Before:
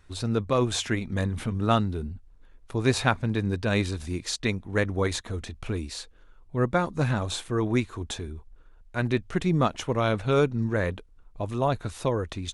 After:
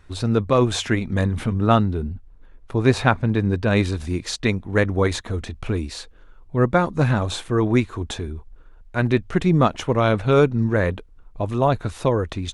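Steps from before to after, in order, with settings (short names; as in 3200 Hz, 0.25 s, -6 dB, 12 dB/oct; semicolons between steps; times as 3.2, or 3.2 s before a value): high shelf 3700 Hz -6 dB, from 1.54 s -11.5 dB, from 3.77 s -6.5 dB; gain +6.5 dB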